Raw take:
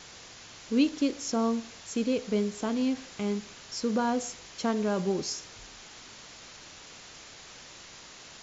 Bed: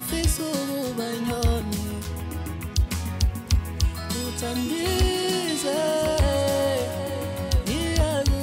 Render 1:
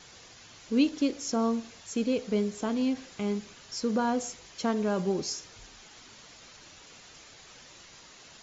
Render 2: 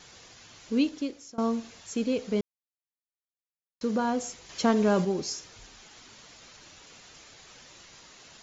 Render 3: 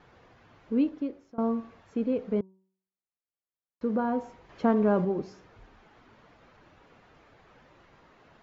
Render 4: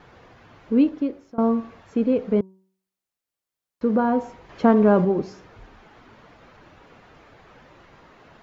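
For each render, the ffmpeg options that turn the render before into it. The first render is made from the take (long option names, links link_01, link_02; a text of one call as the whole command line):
ffmpeg -i in.wav -af "afftdn=noise_reduction=6:noise_floor=-49" out.wav
ffmpeg -i in.wav -filter_complex "[0:a]asettb=1/sr,asplit=3[link_01][link_02][link_03];[link_01]atrim=end=4.494[link_04];[link_02]atrim=start=4.49:end=5.05,asetpts=PTS-STARTPTS,afade=type=in:duration=0.004:curve=qsin,afade=type=out:start_time=0.556:duration=0.004:curve=qsin,acontrast=31[link_05];[link_03]atrim=start=5.046[link_06];[link_04][link_05]acrossfade=duration=0.004:curve1=hsin:curve2=qsin[link_07];[link_07][link_06]acrossfade=duration=0.004:curve1=qsin:curve2=hsin,asplit=4[link_08][link_09][link_10][link_11];[link_08]atrim=end=1.38,asetpts=PTS-STARTPTS,afade=type=out:start_time=0.73:duration=0.65:silence=0.0749894[link_12];[link_09]atrim=start=1.38:end=2.41,asetpts=PTS-STARTPTS,afade=type=in:duration=0.004:curve=hsin:silence=0.0749894,afade=type=out:start_time=1.026:duration=0.004:curve=hsin[link_13];[link_10]atrim=start=2.41:end=3.81,asetpts=PTS-STARTPTS,volume=0[link_14];[link_11]atrim=start=3.81,asetpts=PTS-STARTPTS,afade=type=in:duration=0.004:curve=hsin[link_15];[link_12][link_13][link_14][link_15]concat=n=4:v=0:a=1" out.wav
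ffmpeg -i in.wav -af "lowpass=1400,bandreject=frequency=189.3:width_type=h:width=4,bandreject=frequency=378.6:width_type=h:width=4,bandreject=frequency=567.9:width_type=h:width=4,bandreject=frequency=757.2:width_type=h:width=4,bandreject=frequency=946.5:width_type=h:width=4,bandreject=frequency=1135.8:width_type=h:width=4" out.wav
ffmpeg -i in.wav -af "volume=7.5dB" out.wav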